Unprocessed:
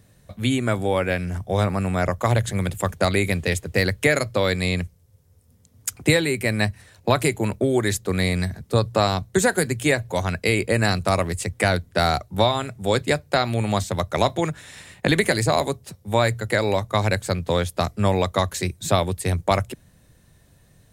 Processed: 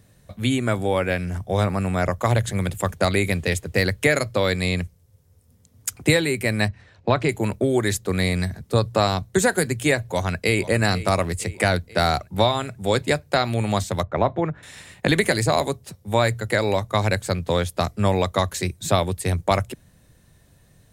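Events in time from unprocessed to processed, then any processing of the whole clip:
0:06.68–0:07.29: high-frequency loss of the air 160 metres
0:09.99–0:10.65: delay throw 480 ms, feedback 60%, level −16 dB
0:14.03–0:14.63: low-pass filter 1,600 Hz

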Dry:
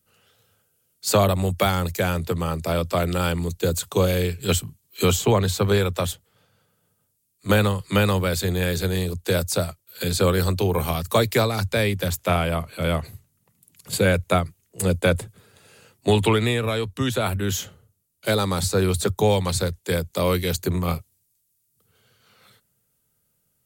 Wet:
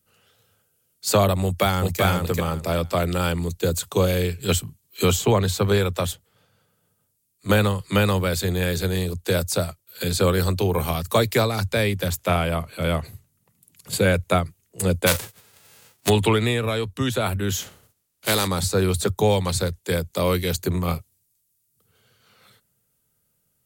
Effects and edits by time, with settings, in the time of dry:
0:01.43–0:02.01: delay throw 390 ms, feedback 20%, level −2 dB
0:15.06–0:16.08: spectral envelope flattened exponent 0.3
0:17.61–0:18.46: compressing power law on the bin magnitudes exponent 0.55

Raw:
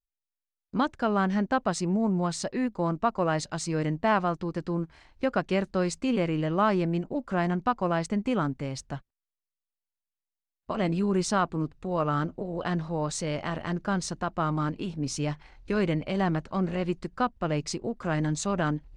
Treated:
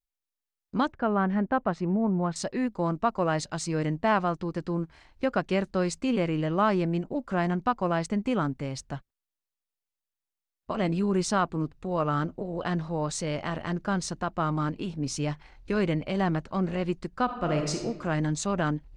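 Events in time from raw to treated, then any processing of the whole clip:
0:00.92–0:02.36: low-pass filter 2,000 Hz
0:17.24–0:17.82: thrown reverb, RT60 1.1 s, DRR 2.5 dB

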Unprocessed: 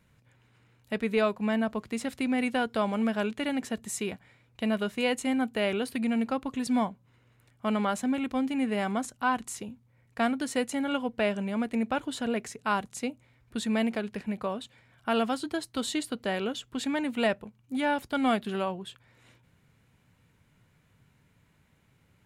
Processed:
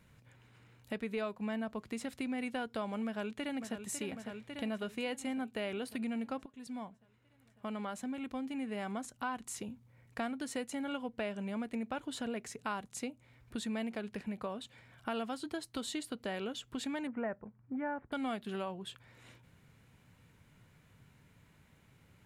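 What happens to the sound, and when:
0:03.05–0:03.83: delay throw 550 ms, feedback 65%, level −11 dB
0:06.46–0:09.67: fade in, from −20.5 dB
0:17.07–0:18.12: Butterworth low-pass 1,900 Hz
whole clip: downward compressor 2.5 to 1, threshold −42 dBFS; level +1.5 dB

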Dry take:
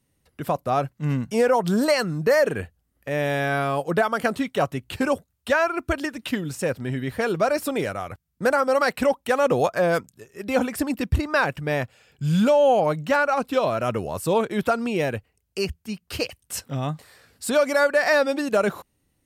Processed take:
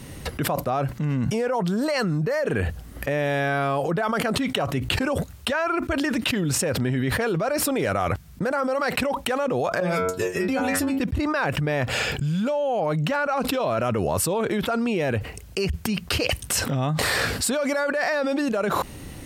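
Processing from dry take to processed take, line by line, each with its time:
0:09.80–0:11.00: stiff-string resonator 89 Hz, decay 0.36 s, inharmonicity 0.002
whole clip: high-shelf EQ 8,100 Hz −7.5 dB; envelope flattener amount 100%; level −8 dB

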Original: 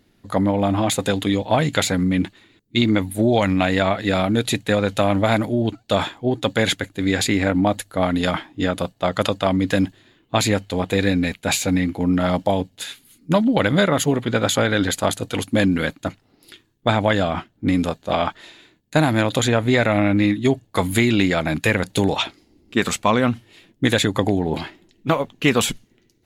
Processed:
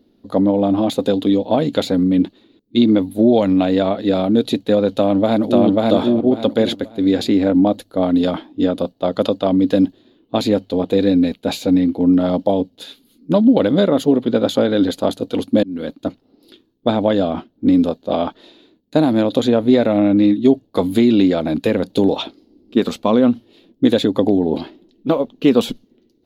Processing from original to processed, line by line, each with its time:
0:04.89–0:05.66: delay throw 540 ms, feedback 25%, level −0.5 dB
0:15.63–0:16.04: fade in
whole clip: octave-band graphic EQ 125/250/500/2,000/4,000/8,000 Hz −5/+11/+8/−9/+7/−12 dB; level −4 dB

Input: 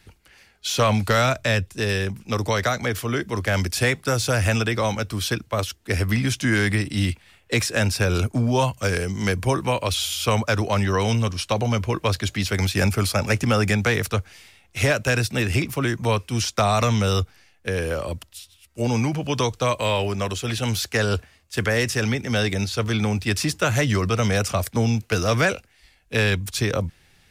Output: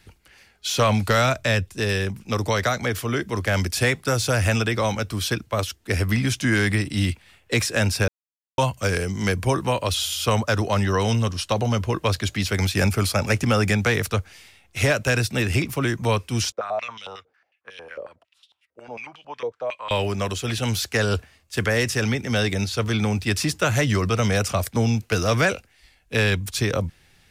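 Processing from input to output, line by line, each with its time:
0:08.08–0:08.58: silence
0:09.52–0:12.05: notch filter 2,300 Hz, Q 11
0:16.52–0:19.91: band-pass on a step sequencer 11 Hz 490–3,300 Hz

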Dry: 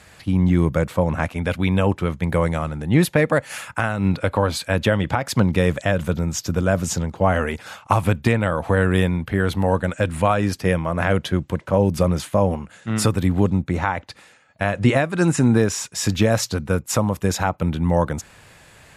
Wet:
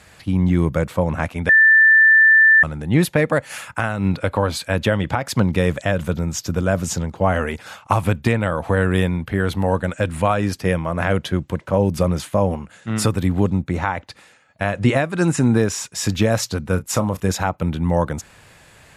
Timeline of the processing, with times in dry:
0:01.49–0:02.63: beep over 1,770 Hz −8 dBFS
0:16.61–0:17.32: double-tracking delay 32 ms −13 dB

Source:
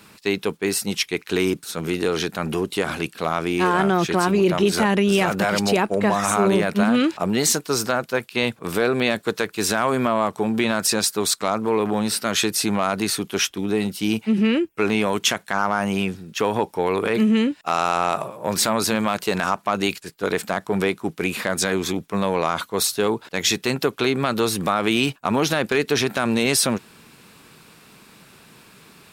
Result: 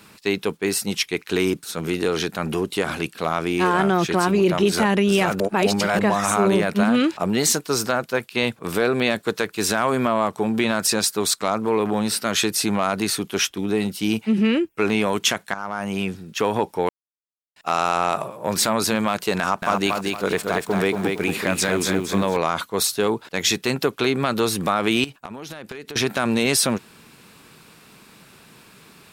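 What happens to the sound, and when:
0:05.40–0:05.99: reverse
0:15.54–0:16.19: fade in, from −12.5 dB
0:16.89–0:17.56: silence
0:19.39–0:22.37: feedback echo at a low word length 231 ms, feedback 35%, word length 8 bits, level −3.5 dB
0:25.04–0:25.96: downward compressor 12 to 1, threshold −31 dBFS

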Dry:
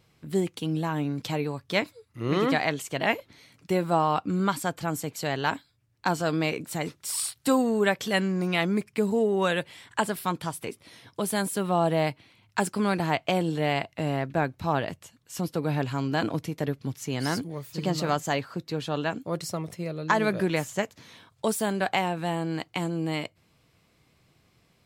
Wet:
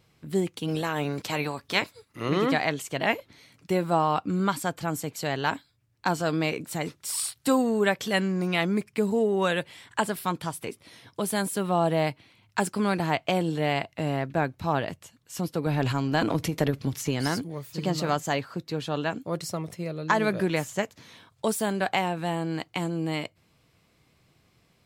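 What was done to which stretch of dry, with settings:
0:00.67–0:02.28: ceiling on every frequency bin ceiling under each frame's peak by 14 dB
0:15.66–0:17.28: transient designer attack +6 dB, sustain +10 dB

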